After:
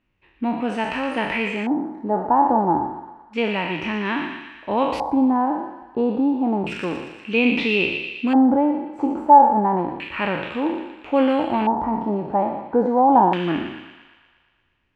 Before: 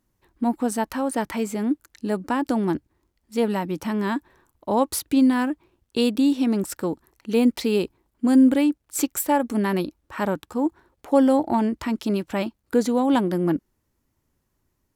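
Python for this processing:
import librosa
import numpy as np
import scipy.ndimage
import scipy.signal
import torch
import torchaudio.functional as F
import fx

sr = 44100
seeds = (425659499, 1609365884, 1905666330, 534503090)

y = fx.spec_trails(x, sr, decay_s=0.81)
y = fx.echo_wet_highpass(y, sr, ms=117, feedback_pct=65, hz=1700.0, wet_db=-6)
y = fx.filter_lfo_lowpass(y, sr, shape='square', hz=0.3, low_hz=840.0, high_hz=2600.0, q=6.1)
y = y * 10.0 ** (-2.0 / 20.0)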